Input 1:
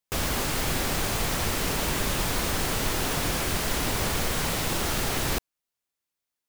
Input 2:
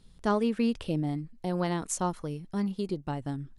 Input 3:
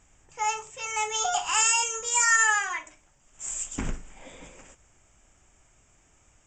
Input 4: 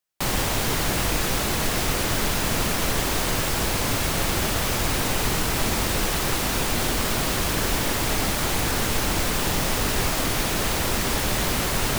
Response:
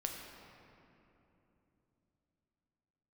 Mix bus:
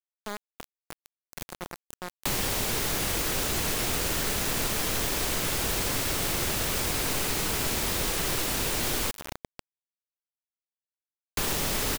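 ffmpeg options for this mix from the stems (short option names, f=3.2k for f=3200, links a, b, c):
-filter_complex "[0:a]asubboost=boost=10:cutoff=180,acrusher=bits=6:mix=0:aa=0.000001,adelay=400,volume=-16.5dB,asplit=3[a][b][c];[b]volume=-21.5dB[d];[c]volume=-10dB[e];[1:a]volume=-11dB,asplit=4[f][g][h][i];[g]volume=-22.5dB[j];[h]volume=-22.5dB[k];[2:a]adelay=1850,volume=-17dB[l];[3:a]adelay=2050,volume=0dB,asplit=3[m][n][o];[m]atrim=end=9.11,asetpts=PTS-STARTPTS,afade=t=out:st=9.106:d=0.004:c=hsin[p];[n]atrim=start=9.11:end=11.37,asetpts=PTS-STARTPTS,volume=0[q];[o]atrim=start=11.37,asetpts=PTS-STARTPTS,afade=t=in:d=0.004:c=hsin[r];[p][q][r]concat=n=3:v=0:a=1,asplit=3[s][t][u];[t]volume=-8dB[v];[u]volume=-11dB[w];[i]apad=whole_len=303485[x];[a][x]sidechaincompress=threshold=-56dB:ratio=6:attack=16:release=153[y];[4:a]atrim=start_sample=2205[z];[d][j][v]amix=inputs=3:normalize=0[aa];[aa][z]afir=irnorm=-1:irlink=0[ab];[e][k][w]amix=inputs=3:normalize=0,aecho=0:1:100:1[ac];[y][f][l][s][ab][ac]amix=inputs=6:normalize=0,adynamicequalizer=threshold=0.00501:dfrequency=410:dqfactor=1.7:tfrequency=410:tqfactor=1.7:attack=5:release=100:ratio=0.375:range=2:mode=boostabove:tftype=bell,acrossover=split=190|500|1600|4800[ad][ae][af][ag][ah];[ad]acompressor=threshold=-34dB:ratio=4[ai];[ae]acompressor=threshold=-40dB:ratio=4[aj];[af]acompressor=threshold=-40dB:ratio=4[ak];[ag]acompressor=threshold=-37dB:ratio=4[al];[ah]acompressor=threshold=-33dB:ratio=4[am];[ai][aj][ak][al][am]amix=inputs=5:normalize=0,acrusher=bits=4:mix=0:aa=0.000001"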